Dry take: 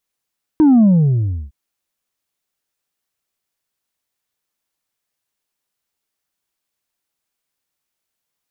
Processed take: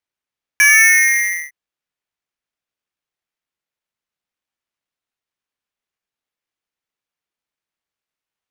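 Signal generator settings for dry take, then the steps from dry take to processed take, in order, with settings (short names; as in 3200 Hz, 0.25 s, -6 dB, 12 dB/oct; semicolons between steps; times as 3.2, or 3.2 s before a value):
sub drop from 320 Hz, over 0.91 s, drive 2.5 dB, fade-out 0.69 s, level -7.5 dB
LPF 1400 Hz 6 dB/oct; polarity switched at an audio rate 2000 Hz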